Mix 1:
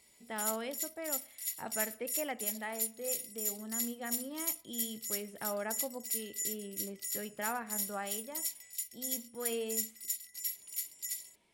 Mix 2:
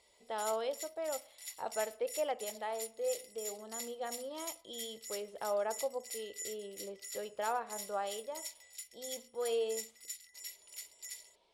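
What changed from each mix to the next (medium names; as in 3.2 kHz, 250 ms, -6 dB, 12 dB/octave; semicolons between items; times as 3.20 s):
speech: add graphic EQ 125/250/500/1000/2000/4000/8000 Hz -10/-11/+8/+4/-9/+8/-3 dB; master: add distance through air 63 m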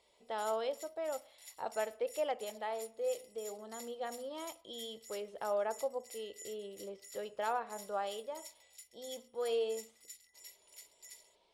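background -7.5 dB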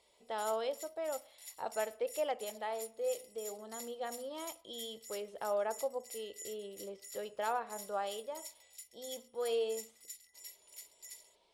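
master: add treble shelf 8.4 kHz +7 dB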